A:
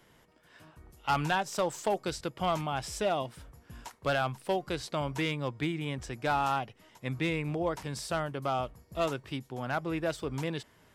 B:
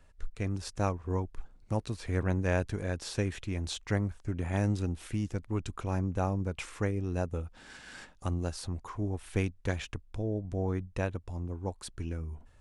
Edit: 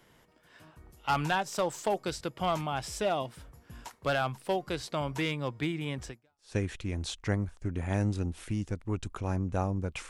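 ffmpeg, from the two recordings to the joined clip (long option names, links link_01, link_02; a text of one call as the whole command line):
ffmpeg -i cue0.wav -i cue1.wav -filter_complex "[0:a]apad=whole_dur=10.09,atrim=end=10.09,atrim=end=6.55,asetpts=PTS-STARTPTS[link_01];[1:a]atrim=start=2.72:end=6.72,asetpts=PTS-STARTPTS[link_02];[link_01][link_02]acrossfade=duration=0.46:curve1=exp:curve2=exp" out.wav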